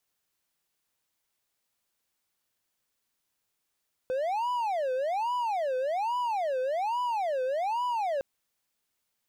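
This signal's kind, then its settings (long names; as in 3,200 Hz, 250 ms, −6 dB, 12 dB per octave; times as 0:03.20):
siren wail 509–989 Hz 1.2 per second triangle −24.5 dBFS 4.11 s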